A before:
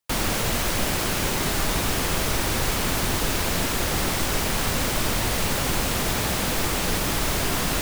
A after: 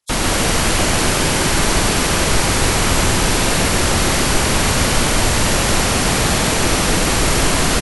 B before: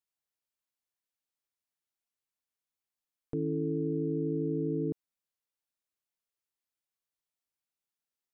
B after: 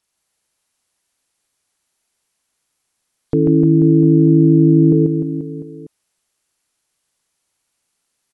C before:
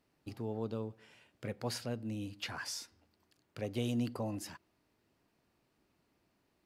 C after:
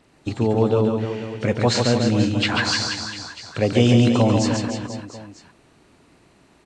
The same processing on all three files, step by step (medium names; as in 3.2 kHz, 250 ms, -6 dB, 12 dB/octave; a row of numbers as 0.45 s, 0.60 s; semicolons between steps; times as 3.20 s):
knee-point frequency compression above 3.2 kHz 1.5:1; reverse bouncing-ball echo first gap 140 ms, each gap 1.15×, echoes 5; peak normalisation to -2 dBFS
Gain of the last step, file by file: +6.5 dB, +18.0 dB, +19.0 dB